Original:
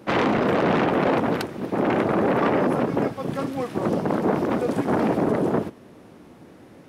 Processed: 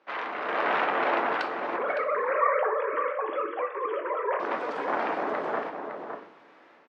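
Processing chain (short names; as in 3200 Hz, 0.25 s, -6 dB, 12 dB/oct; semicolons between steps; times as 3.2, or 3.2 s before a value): 1.76–4.4 sine-wave speech; Bessel high-pass 1500 Hz, order 2; high shelf 2500 Hz -11 dB; AGC gain up to 10 dB; air absorption 170 m; outdoor echo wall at 96 m, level -6 dB; shoebox room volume 61 m³, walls mixed, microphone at 0.38 m; gain -2.5 dB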